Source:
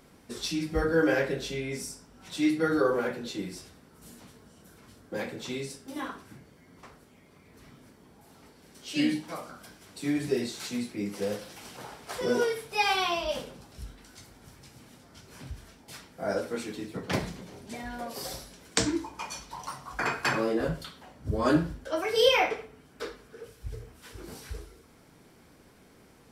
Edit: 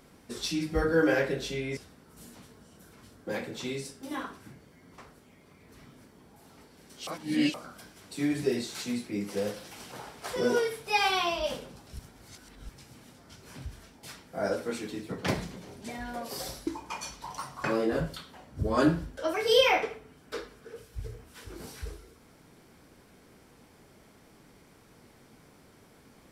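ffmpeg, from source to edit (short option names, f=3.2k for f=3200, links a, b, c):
-filter_complex "[0:a]asplit=8[a][b][c][d][e][f][g][h];[a]atrim=end=1.772[i];[b]atrim=start=3.618:end=8.922[j];[c]atrim=start=8.918:end=9.392,asetpts=PTS-STARTPTS,areverse[k];[d]atrim=start=9.388:end=13.842[l];[e]atrim=start=13.838:end=14.542,asetpts=PTS-STARTPTS,areverse[m];[f]atrim=start=14.538:end=18.522[n];[g]atrim=start=18.958:end=19.932[o];[h]atrim=start=20.318[p];[i][j]acrossfade=d=0.004:c1=hsin:c2=hsin[q];[q][k]acrossfade=d=0.004:c1=hsin:c2=hsin[r];[r][l]acrossfade=d=0.004:c1=hsin:c2=hsin[s];[s][m]acrossfade=d=0.004:c1=hsin:c2=hsin[t];[t][n]acrossfade=d=0.004:c1=hsin:c2=hsin[u];[u][o]acrossfade=d=0.004:c1=hsin:c2=hsin[v];[v][p]acrossfade=d=0.004:c1=hsin:c2=hsin"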